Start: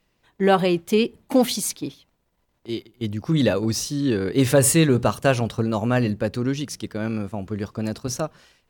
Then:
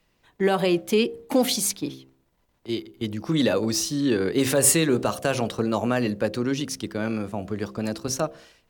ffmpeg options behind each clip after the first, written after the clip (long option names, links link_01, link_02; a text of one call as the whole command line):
ffmpeg -i in.wav -filter_complex "[0:a]bandreject=frequency=65.97:width_type=h:width=4,bandreject=frequency=131.94:width_type=h:width=4,bandreject=frequency=197.91:width_type=h:width=4,bandreject=frequency=263.88:width_type=h:width=4,bandreject=frequency=329.85:width_type=h:width=4,bandreject=frequency=395.82:width_type=h:width=4,bandreject=frequency=461.79:width_type=h:width=4,bandreject=frequency=527.76:width_type=h:width=4,bandreject=frequency=593.73:width_type=h:width=4,bandreject=frequency=659.7:width_type=h:width=4,bandreject=frequency=725.67:width_type=h:width=4,acrossover=split=210|4800[link_01][link_02][link_03];[link_01]acompressor=threshold=-37dB:ratio=4[link_04];[link_02]alimiter=limit=-13.5dB:level=0:latency=1:release=86[link_05];[link_04][link_05][link_03]amix=inputs=3:normalize=0,volume=1.5dB" out.wav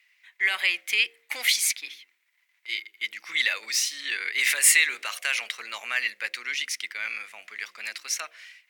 ffmpeg -i in.wav -af "highpass=frequency=2100:width_type=q:width=6.5" out.wav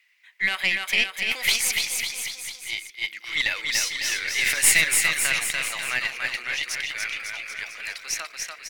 ffmpeg -i in.wav -filter_complex "[0:a]aeval=exprs='0.531*(cos(1*acos(clip(val(0)/0.531,-1,1)))-cos(1*PI/2))+0.0473*(cos(4*acos(clip(val(0)/0.531,-1,1)))-cos(4*PI/2))':channel_layout=same,asplit=2[link_01][link_02];[link_02]aecho=0:1:290|551|785.9|997.3|1188:0.631|0.398|0.251|0.158|0.1[link_03];[link_01][link_03]amix=inputs=2:normalize=0" out.wav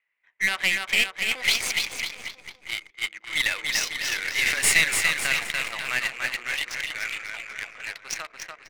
ffmpeg -i in.wav -af "adynamicsmooth=sensitivity=4.5:basefreq=1000" out.wav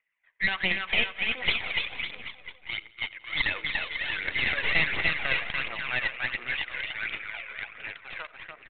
ffmpeg -i in.wav -af "aphaser=in_gain=1:out_gain=1:delay=2.1:decay=0.48:speed=1.4:type=triangular,aresample=8000,aeval=exprs='clip(val(0),-1,0.0631)':channel_layout=same,aresample=44100,aecho=1:1:88|176|264|352:0.0841|0.048|0.0273|0.0156,volume=-3dB" out.wav